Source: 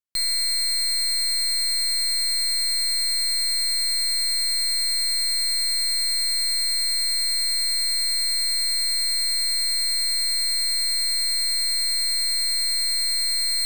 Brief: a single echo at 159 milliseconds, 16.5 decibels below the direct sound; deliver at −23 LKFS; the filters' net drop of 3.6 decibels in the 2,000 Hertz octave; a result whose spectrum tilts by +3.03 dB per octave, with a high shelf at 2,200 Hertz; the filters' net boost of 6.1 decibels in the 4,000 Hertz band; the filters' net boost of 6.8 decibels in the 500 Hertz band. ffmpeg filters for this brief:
ffmpeg -i in.wav -af "equalizer=frequency=500:width_type=o:gain=9,equalizer=frequency=2000:width_type=o:gain=-7,highshelf=frequency=2200:gain=3.5,equalizer=frequency=4000:width_type=o:gain=4.5,aecho=1:1:159:0.15,volume=-9dB" out.wav

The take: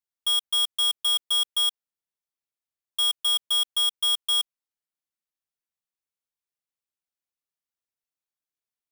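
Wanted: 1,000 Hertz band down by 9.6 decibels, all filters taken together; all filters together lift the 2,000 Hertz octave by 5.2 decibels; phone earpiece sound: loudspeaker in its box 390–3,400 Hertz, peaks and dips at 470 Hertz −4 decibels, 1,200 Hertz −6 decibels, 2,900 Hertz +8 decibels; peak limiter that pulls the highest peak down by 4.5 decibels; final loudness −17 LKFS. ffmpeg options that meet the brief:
ffmpeg -i in.wav -af "equalizer=frequency=1000:width_type=o:gain=-9,equalizer=frequency=2000:width_type=o:gain=8.5,alimiter=limit=-22.5dB:level=0:latency=1,highpass=390,equalizer=frequency=470:width_type=q:width=4:gain=-4,equalizer=frequency=1200:width_type=q:width=4:gain=-6,equalizer=frequency=2900:width_type=q:width=4:gain=8,lowpass=frequency=3400:width=0.5412,lowpass=frequency=3400:width=1.3066,volume=7.5dB" out.wav

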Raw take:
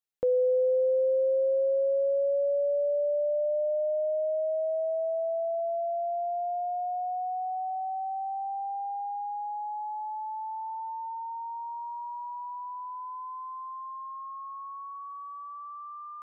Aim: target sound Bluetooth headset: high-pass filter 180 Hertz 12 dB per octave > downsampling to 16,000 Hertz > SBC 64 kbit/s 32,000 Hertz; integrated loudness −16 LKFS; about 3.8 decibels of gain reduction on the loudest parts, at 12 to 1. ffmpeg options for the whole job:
ffmpeg -i in.wav -af "acompressor=threshold=-27dB:ratio=12,highpass=180,aresample=16000,aresample=44100,volume=16.5dB" -ar 32000 -c:a sbc -b:a 64k out.sbc

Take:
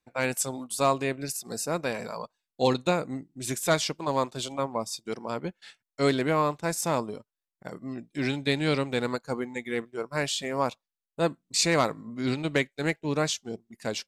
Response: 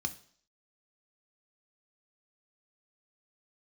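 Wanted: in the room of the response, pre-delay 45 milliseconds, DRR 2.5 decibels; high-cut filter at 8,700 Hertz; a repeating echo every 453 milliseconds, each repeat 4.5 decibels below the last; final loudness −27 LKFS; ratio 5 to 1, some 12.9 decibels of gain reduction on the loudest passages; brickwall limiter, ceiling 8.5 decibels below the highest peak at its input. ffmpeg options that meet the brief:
-filter_complex "[0:a]lowpass=8700,acompressor=threshold=-34dB:ratio=5,alimiter=level_in=6.5dB:limit=-24dB:level=0:latency=1,volume=-6.5dB,aecho=1:1:453|906|1359|1812|2265|2718|3171|3624|4077:0.596|0.357|0.214|0.129|0.0772|0.0463|0.0278|0.0167|0.01,asplit=2[link_01][link_02];[1:a]atrim=start_sample=2205,adelay=45[link_03];[link_02][link_03]afir=irnorm=-1:irlink=0,volume=-4dB[link_04];[link_01][link_04]amix=inputs=2:normalize=0,volume=9.5dB"

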